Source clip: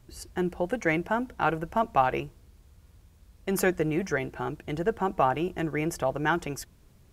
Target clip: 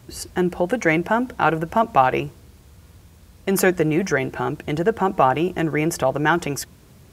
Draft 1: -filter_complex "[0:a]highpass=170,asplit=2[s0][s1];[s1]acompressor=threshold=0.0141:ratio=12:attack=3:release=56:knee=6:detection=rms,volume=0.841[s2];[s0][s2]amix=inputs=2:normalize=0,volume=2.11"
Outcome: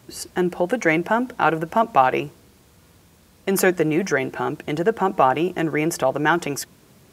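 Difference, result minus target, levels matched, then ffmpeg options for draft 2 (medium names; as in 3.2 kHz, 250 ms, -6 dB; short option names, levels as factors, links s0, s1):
125 Hz band -3.0 dB
-filter_complex "[0:a]highpass=81,asplit=2[s0][s1];[s1]acompressor=threshold=0.0141:ratio=12:attack=3:release=56:knee=6:detection=rms,volume=0.841[s2];[s0][s2]amix=inputs=2:normalize=0,volume=2.11"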